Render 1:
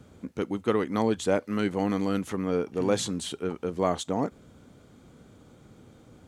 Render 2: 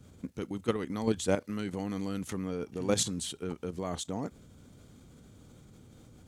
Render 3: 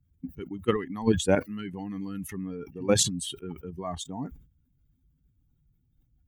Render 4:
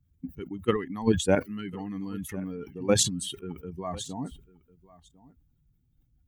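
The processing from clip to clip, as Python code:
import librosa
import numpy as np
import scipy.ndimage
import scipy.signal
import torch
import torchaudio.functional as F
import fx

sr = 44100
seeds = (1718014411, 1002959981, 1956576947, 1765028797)

y1 = fx.low_shelf(x, sr, hz=210.0, db=10.5)
y1 = fx.level_steps(y1, sr, step_db=10)
y1 = fx.high_shelf(y1, sr, hz=3000.0, db=11.0)
y1 = y1 * librosa.db_to_amplitude(-4.5)
y2 = fx.bin_expand(y1, sr, power=2.0)
y2 = fx.sustainer(y2, sr, db_per_s=120.0)
y2 = y2 * librosa.db_to_amplitude(7.5)
y3 = y2 + 10.0 ** (-21.5 / 20.0) * np.pad(y2, (int(1049 * sr / 1000.0), 0))[:len(y2)]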